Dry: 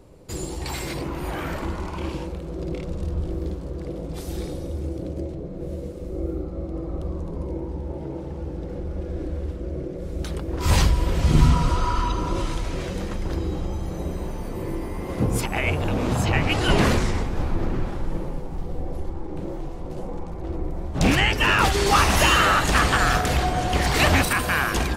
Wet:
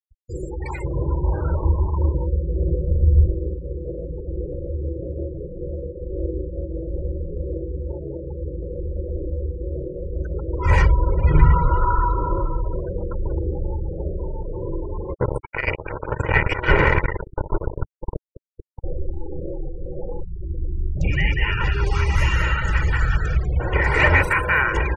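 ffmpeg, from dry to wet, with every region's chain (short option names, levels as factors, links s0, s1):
-filter_complex "[0:a]asettb=1/sr,asplit=3[s0][s1][s2];[s0]atrim=end=0.844[s3];[s1]atrim=start=0.84:end=3.31,asetpts=PTS-STARTPTS,afade=t=in:d=0.004:c=qsin,afade=t=out:st=2.466:d=0.004:c=qsin,lowpass=1300,equalizer=f=78:t=o:w=2:g=10.5[s4];[s2]atrim=start=3.306[s5];[s3][s4]acrossfade=d=0.004:c1=hsin:c2=qsin[s6];[s6][s5]acrossfade=d=0.004:c1=qsin:c2=hsin,asettb=1/sr,asplit=3[s7][s8][s9];[s7]atrim=end=11.804[s10];[s8]atrim=start=11.8:end=13.12,asetpts=PTS-STARTPTS,afade=t=in:d=0.004:c=qsin,afade=t=out:st=1.316:d=0.004:c=qsin,lowpass=3700,aemphasis=mode=reproduction:type=50fm[s11];[s9]atrim=start=13.116[s12];[s10][s11]acrossfade=d=0.004:c1=hsin:c2=qsin[s13];[s13][s12]acrossfade=d=0.004:c1=qsin:c2=hsin,asettb=1/sr,asplit=3[s14][s15][s16];[s14]atrim=end=15.144[s17];[s15]atrim=start=15.14:end=18.84,asetpts=PTS-STARTPTS,afade=t=in:d=0.004:c=qsin,afade=t=out:st=3.696:d=0.004:c=qsin,highshelf=f=5000:g=-5,acrusher=bits=2:mix=0:aa=0.5[s18];[s16]atrim=start=18.836[s19];[s17][s18]acrossfade=d=0.004:c1=hsin:c2=qsin[s20];[s20][s19]acrossfade=d=0.004:c1=qsin:c2=hsin,asettb=1/sr,asplit=3[s21][s22][s23];[s21]atrim=end=20.224[s24];[s22]atrim=start=20.22:end=23.6,asetpts=PTS-STARTPTS,afade=t=in:d=0.004:c=qsin,afade=t=out:st=3.376:d=0.004:c=qsin,lowpass=8000,acrossover=split=210|3000[s25][s26][s27];[s26]acompressor=threshold=0.00158:ratio=1.5:attack=3.2:release=140:knee=2.83:detection=peak[s28];[s25][s28][s27]amix=inputs=3:normalize=0,aecho=1:1:193:0.668,atrim=end_sample=149058[s29];[s23]atrim=start=23.596[s30];[s24][s29]acrossfade=d=0.004:c1=hsin:c2=qsin[s31];[s31][s30]acrossfade=d=0.004:c1=qsin:c2=hsin,afftfilt=real='re*gte(hypot(re,im),0.0447)':imag='im*gte(hypot(re,im),0.0447)':win_size=1024:overlap=0.75,highshelf=f=2800:t=q:w=3:g=-10,aecho=1:1:2.1:0.84,volume=0.891"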